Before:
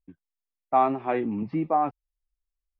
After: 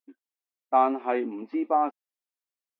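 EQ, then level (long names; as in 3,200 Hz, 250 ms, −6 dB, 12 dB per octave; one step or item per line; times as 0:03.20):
linear-phase brick-wall high-pass 230 Hz
0.0 dB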